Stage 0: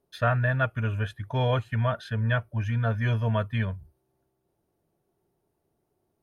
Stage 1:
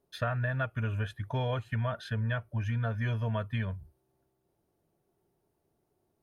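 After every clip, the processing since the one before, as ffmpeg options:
ffmpeg -i in.wav -af "acompressor=threshold=-27dB:ratio=5,volume=-1dB" out.wav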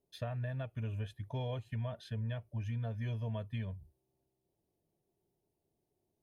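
ffmpeg -i in.wav -af "equalizer=frequency=1400:width=1.9:gain=-14.5,volume=-6dB" out.wav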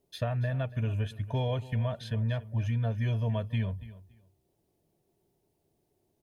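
ffmpeg -i in.wav -af "aecho=1:1:283|566:0.141|0.0268,volume=8dB" out.wav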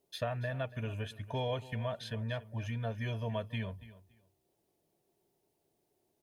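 ffmpeg -i in.wav -af "lowshelf=frequency=210:gain=-11.5" out.wav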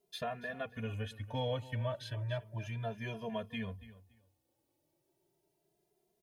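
ffmpeg -i in.wav -filter_complex "[0:a]asplit=2[link_01][link_02];[link_02]adelay=2.5,afreqshift=0.33[link_03];[link_01][link_03]amix=inputs=2:normalize=1,volume=1.5dB" out.wav

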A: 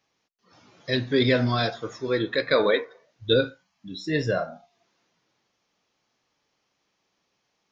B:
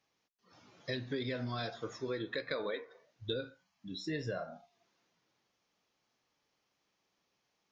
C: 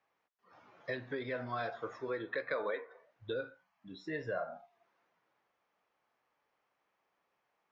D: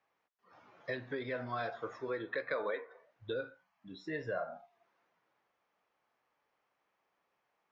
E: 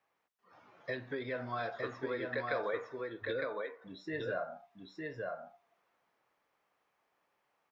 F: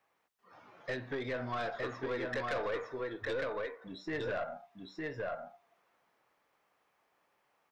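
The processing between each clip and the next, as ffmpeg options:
ffmpeg -i in.wav -af "acompressor=threshold=-28dB:ratio=8,volume=-6dB" out.wav
ffmpeg -i in.wav -filter_complex "[0:a]acrossover=split=480 2200:gain=0.251 1 0.1[link_01][link_02][link_03];[link_01][link_02][link_03]amix=inputs=3:normalize=0,volume=5dB" out.wav
ffmpeg -i in.wav -af anull out.wav
ffmpeg -i in.wav -af "aecho=1:1:909:0.708" out.wav
ffmpeg -i in.wav -af "aeval=exprs='(tanh(50.1*val(0)+0.25)-tanh(0.25))/50.1':channel_layout=same,volume=4dB" out.wav

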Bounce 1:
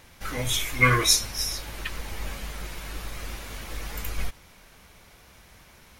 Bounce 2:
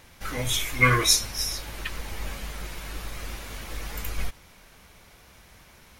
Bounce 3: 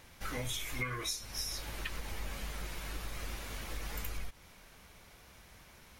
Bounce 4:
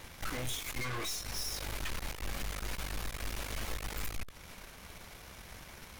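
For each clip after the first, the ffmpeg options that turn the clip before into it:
ffmpeg -i in.wav -af anull out.wav
ffmpeg -i in.wav -af "acompressor=threshold=-29dB:ratio=16,volume=-4.5dB" out.wav
ffmpeg -i in.wav -af "aeval=exprs='(tanh(224*val(0)+0.75)-tanh(0.75))/224':channel_layout=same,volume=11dB" out.wav

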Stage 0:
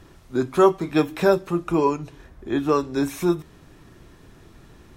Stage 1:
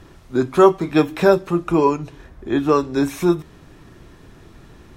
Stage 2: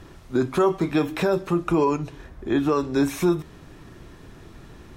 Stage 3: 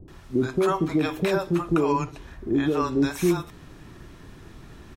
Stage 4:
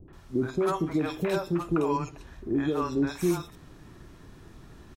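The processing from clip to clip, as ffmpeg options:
ffmpeg -i in.wav -af "highshelf=frequency=7100:gain=-4.5,volume=4dB" out.wav
ffmpeg -i in.wav -af "alimiter=limit=-12dB:level=0:latency=1:release=57" out.wav
ffmpeg -i in.wav -filter_complex "[0:a]acrossover=split=540[link_01][link_02];[link_02]adelay=80[link_03];[link_01][link_03]amix=inputs=2:normalize=0" out.wav
ffmpeg -i in.wav -filter_complex "[0:a]acrossover=split=2500[link_01][link_02];[link_02]adelay=50[link_03];[link_01][link_03]amix=inputs=2:normalize=0,volume=-4dB" out.wav

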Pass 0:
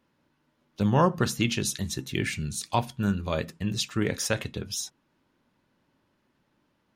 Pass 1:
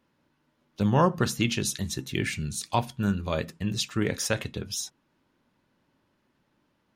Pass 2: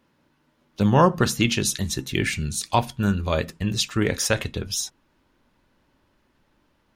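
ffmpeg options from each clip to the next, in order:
ffmpeg -i in.wav -af anull out.wav
ffmpeg -i in.wav -af "asubboost=boost=4.5:cutoff=63,volume=5.5dB" out.wav

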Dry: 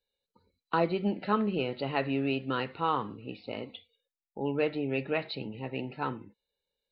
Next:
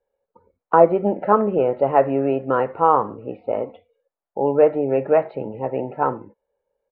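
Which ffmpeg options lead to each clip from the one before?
ffmpeg -i in.wav -af "firequalizer=gain_entry='entry(240,0);entry(560,13);entry(4000,-29)':delay=0.05:min_phase=1,volume=5.5dB" out.wav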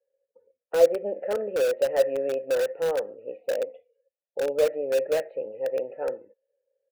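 ffmpeg -i in.wav -filter_complex "[0:a]asplit=3[link_01][link_02][link_03];[link_01]bandpass=frequency=530:width_type=q:width=8,volume=0dB[link_04];[link_02]bandpass=frequency=1840:width_type=q:width=8,volume=-6dB[link_05];[link_03]bandpass=frequency=2480:width_type=q:width=8,volume=-9dB[link_06];[link_04][link_05][link_06]amix=inputs=3:normalize=0,asplit=2[link_07][link_08];[link_08]aeval=exprs='(mod(11.9*val(0)+1,2)-1)/11.9':channel_layout=same,volume=-10.5dB[link_09];[link_07][link_09]amix=inputs=2:normalize=0" out.wav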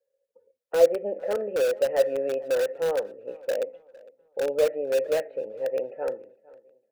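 ffmpeg -i in.wav -filter_complex "[0:a]asplit=2[link_01][link_02];[link_02]adelay=457,lowpass=frequency=2800:poles=1,volume=-22dB,asplit=2[link_03][link_04];[link_04]adelay=457,lowpass=frequency=2800:poles=1,volume=0.38,asplit=2[link_05][link_06];[link_06]adelay=457,lowpass=frequency=2800:poles=1,volume=0.38[link_07];[link_01][link_03][link_05][link_07]amix=inputs=4:normalize=0" out.wav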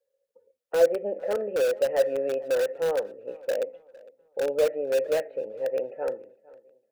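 ffmpeg -i in.wav -af "asoftclip=type=tanh:threshold=-9.5dB" out.wav

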